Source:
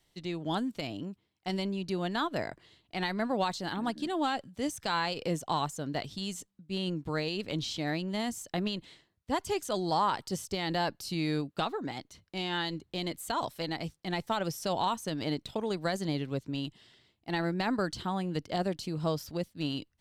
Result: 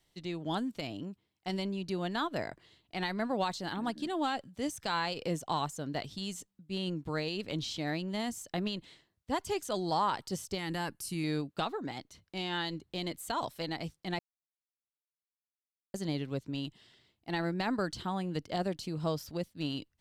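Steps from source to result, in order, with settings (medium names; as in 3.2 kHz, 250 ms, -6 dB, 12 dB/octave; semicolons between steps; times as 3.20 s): 10.58–11.24 s: fifteen-band graphic EQ 630 Hz -10 dB, 4 kHz -8 dB, 10 kHz +11 dB; 14.19–15.94 s: mute; trim -2 dB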